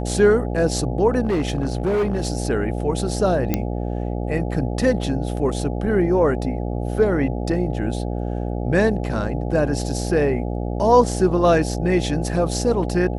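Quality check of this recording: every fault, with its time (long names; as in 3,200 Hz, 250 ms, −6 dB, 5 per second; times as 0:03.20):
mains buzz 60 Hz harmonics 14 −25 dBFS
0:01.25–0:02.28: clipping −16.5 dBFS
0:03.54: click −6 dBFS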